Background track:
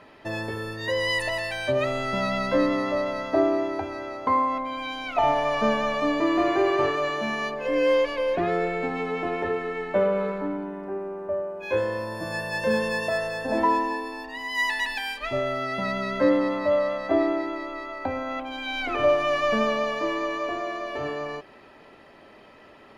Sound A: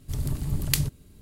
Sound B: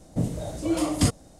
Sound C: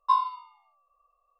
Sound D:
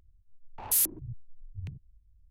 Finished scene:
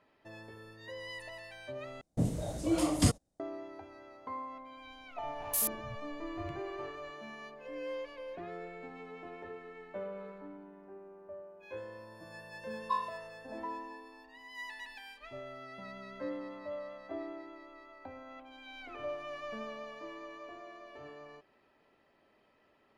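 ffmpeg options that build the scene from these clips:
-filter_complex "[0:a]volume=-19dB[a];[2:a]agate=range=-25dB:threshold=-42dB:ratio=16:release=100:detection=peak[b];[a]asplit=2[c][d];[c]atrim=end=2.014[e];[b]atrim=end=1.39,asetpts=PTS-STARTPTS,volume=-4.5dB[f];[d]atrim=start=3.396[g];[4:a]atrim=end=2.3,asetpts=PTS-STARTPTS,volume=-6.5dB,afade=t=in:d=0.004:c=hsin,afade=t=out:st=2.296:d=0.004:c=hsin,adelay=4820[h];[3:a]atrim=end=1.39,asetpts=PTS-STARTPTS,volume=-10.5dB,afade=t=in:d=0.004:c=hsin,afade=t=out:st=1.386:d=0.004:c=hsin,adelay=12810[i];[e][f]acrossfade=d=0.004:c1=hsin:c2=hsin[j];[j][g]acrossfade=d=0.004:c1=hsin:c2=hsin[k];[k][h][i]amix=inputs=3:normalize=0"

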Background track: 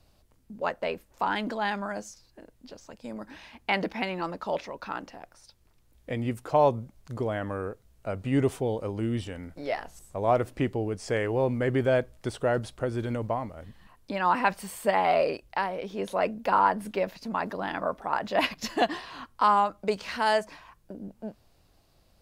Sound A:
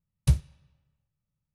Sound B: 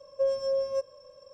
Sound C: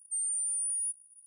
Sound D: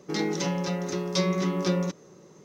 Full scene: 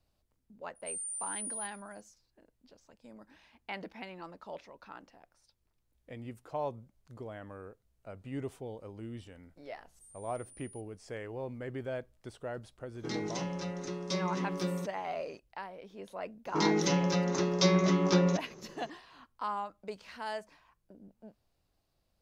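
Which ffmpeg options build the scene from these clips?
-filter_complex "[3:a]asplit=2[a][b];[4:a]asplit=2[c][d];[0:a]volume=-14dB[e];[a]aecho=1:1:153:0.133[f];[b]equalizer=f=8.5k:t=o:w=0.77:g=-14[g];[c]aresample=22050,aresample=44100[h];[d]aresample=16000,aresample=44100[i];[f]atrim=end=1.26,asetpts=PTS-STARTPTS,volume=-7dB,afade=t=in:d=0.004:c=hsin,afade=t=out:st=1.256:d=0.004:c=hsin,adelay=750[j];[g]atrim=end=1.26,asetpts=PTS-STARTPTS,volume=-12dB,afade=t=in:d=0.004:c=hsin,afade=t=out:st=1.256:d=0.004:c=hsin,adelay=9890[k];[h]atrim=end=2.44,asetpts=PTS-STARTPTS,volume=-8.5dB,afade=t=in:d=0.004:c=hsin,afade=t=out:st=2.436:d=0.004:c=hsin,adelay=12950[l];[i]atrim=end=2.44,asetpts=PTS-STARTPTS,afade=t=in:d=0.004:c=hsin,afade=t=out:st=2.436:d=0.004:c=hsin,adelay=16460[m];[e][j][k][l][m]amix=inputs=5:normalize=0"

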